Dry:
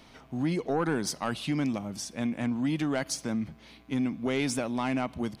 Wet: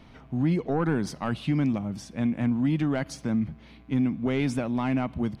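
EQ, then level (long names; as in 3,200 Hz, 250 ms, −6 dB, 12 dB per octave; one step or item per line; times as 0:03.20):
bass and treble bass +8 dB, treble −10 dB
0.0 dB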